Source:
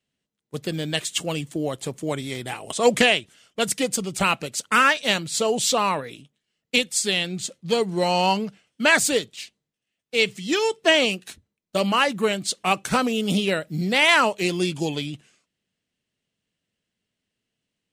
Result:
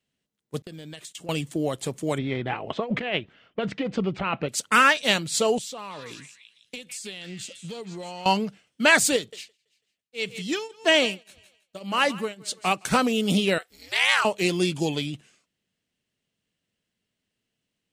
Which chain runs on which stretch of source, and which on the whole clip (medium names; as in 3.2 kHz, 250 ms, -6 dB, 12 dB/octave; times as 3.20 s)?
0.62–1.29 s: gate -38 dBFS, range -27 dB + compression 16:1, threshold -36 dBFS
2.18–4.49 s: Bessel low-pass 2.1 kHz, order 4 + compressor with a negative ratio -26 dBFS
5.58–8.26 s: compression 8:1, threshold -34 dBFS + repeats whose band climbs or falls 159 ms, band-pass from 1.8 kHz, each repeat 0.7 oct, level -3 dB
9.16–12.85 s: thinning echo 165 ms, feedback 27%, high-pass 390 Hz, level -18 dB + tremolo triangle 1.8 Hz, depth 95%
13.58–14.25 s: high-pass 1.1 kHz + ring modulator 110 Hz
whole clip: none